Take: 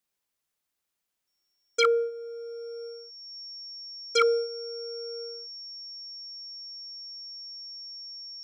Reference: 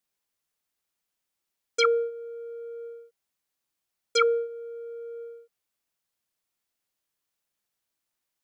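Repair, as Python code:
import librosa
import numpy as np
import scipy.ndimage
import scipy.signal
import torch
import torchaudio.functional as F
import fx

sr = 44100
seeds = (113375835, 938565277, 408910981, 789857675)

y = fx.fix_declip(x, sr, threshold_db=-13.5)
y = fx.notch(y, sr, hz=5500.0, q=30.0)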